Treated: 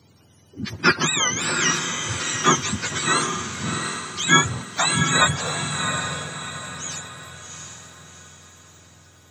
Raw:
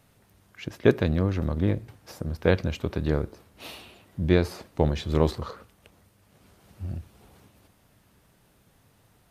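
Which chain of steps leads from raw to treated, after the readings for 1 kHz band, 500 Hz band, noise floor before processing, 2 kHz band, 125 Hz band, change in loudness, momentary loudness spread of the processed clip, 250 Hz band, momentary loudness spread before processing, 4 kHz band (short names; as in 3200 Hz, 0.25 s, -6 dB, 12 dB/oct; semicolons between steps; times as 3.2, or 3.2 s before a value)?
+15.0 dB, -4.5 dB, -63 dBFS, +16.0 dB, -1.5 dB, +5.0 dB, 18 LU, 0.0 dB, 18 LU, +18.0 dB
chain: spectrum mirrored in octaves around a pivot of 770 Hz; on a send: diffused feedback echo 0.723 s, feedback 42%, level -5 dB; on the sum: gain +7.5 dB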